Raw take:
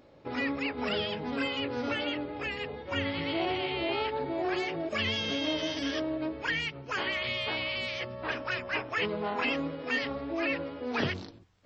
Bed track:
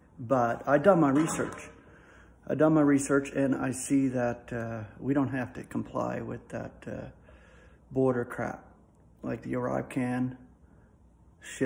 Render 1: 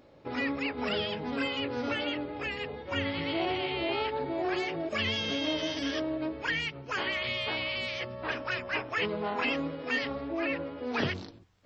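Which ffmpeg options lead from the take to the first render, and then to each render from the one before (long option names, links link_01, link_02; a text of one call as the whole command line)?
ffmpeg -i in.wav -filter_complex "[0:a]asettb=1/sr,asplit=3[link_01][link_02][link_03];[link_01]atrim=end=10.284[link_04];[link_02]atrim=start=10.28:end=10.78,asetpts=PTS-STARTPTS,afade=type=in:duration=0.004:curve=qsin,afade=type=out:start_time=0.496:duration=0.004:curve=qsin,lowpass=frequency=2900:poles=1[link_05];[link_03]atrim=start=10.776[link_06];[link_04][link_05]acrossfade=duration=0.004:curve1=hsin:curve2=qsin[link_07];[link_07][link_06]acrossfade=duration=0.004:curve1=qsin:curve2=hsin" out.wav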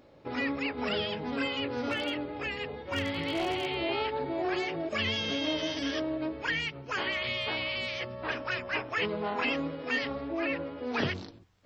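ffmpeg -i in.wav -filter_complex "[0:a]asettb=1/sr,asplit=3[link_01][link_02][link_03];[link_01]atrim=end=1.724[link_04];[link_02]atrim=start=1.72:end=3.75,asetpts=PTS-STARTPTS,afade=type=in:duration=0.004:curve=qsin,afade=type=out:start_time=2.026:duration=0.004:curve=qsin,aeval=exprs='0.0668*(abs(mod(val(0)/0.0668+3,4)-2)-1)':channel_layout=same[link_05];[link_03]atrim=start=3.746[link_06];[link_04][link_05]acrossfade=duration=0.004:curve1=hsin:curve2=qsin[link_07];[link_07][link_06]acrossfade=duration=0.004:curve1=qsin:curve2=hsin" out.wav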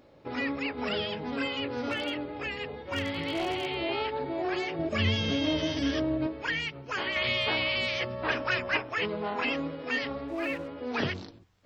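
ffmpeg -i in.wav -filter_complex "[0:a]asettb=1/sr,asplit=3[link_01][link_02][link_03];[link_01]atrim=end=4.794[link_04];[link_02]atrim=start=4.79:end=6.27,asetpts=PTS-STARTPTS,afade=type=in:duration=0.004:curve=qsin,afade=type=out:start_time=1.476:duration=0.004:curve=qsin,equalizer=frequency=79:width=0.37:gain=12[link_05];[link_03]atrim=start=6.266[link_06];[link_04][link_05]acrossfade=duration=0.004:curve1=hsin:curve2=qsin[link_07];[link_07][link_06]acrossfade=duration=0.004:curve1=qsin:curve2=hsin,asettb=1/sr,asplit=3[link_08][link_09][link_10];[link_08]atrim=end=10.284[link_11];[link_09]atrim=start=10.28:end=10.68,asetpts=PTS-STARTPTS,afade=type=in:duration=0.004:curve=qsin,afade=type=out:start_time=0.396:duration=0.004:curve=qsin,aeval=exprs='sgn(val(0))*max(abs(val(0))-0.00282,0)':channel_layout=same[link_12];[link_10]atrim=start=10.676[link_13];[link_11][link_12]acrossfade=duration=0.004:curve1=hsin:curve2=qsin[link_14];[link_14][link_13]acrossfade=duration=0.004:curve1=qsin:curve2=hsin,asplit=3[link_15][link_16][link_17];[link_15]atrim=end=7.162[link_18];[link_16]atrim=start=7.158:end=8.772,asetpts=PTS-STARTPTS,volume=4.5dB[link_19];[link_17]atrim=start=8.768[link_20];[link_18][link_19]acrossfade=duration=0.004:curve1=hsin:curve2=hsin[link_21];[link_21][link_20]acrossfade=duration=0.004:curve1=hsin:curve2=hsin" out.wav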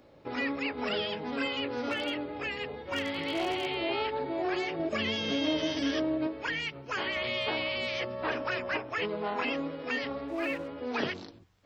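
ffmpeg -i in.wav -filter_complex "[0:a]acrossover=split=200|940[link_01][link_02][link_03];[link_01]acompressor=threshold=-50dB:ratio=6[link_04];[link_03]alimiter=level_in=1dB:limit=-24dB:level=0:latency=1:release=226,volume=-1dB[link_05];[link_04][link_02][link_05]amix=inputs=3:normalize=0" out.wav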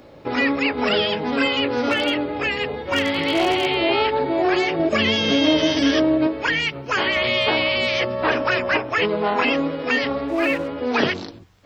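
ffmpeg -i in.wav -af "volume=12dB" out.wav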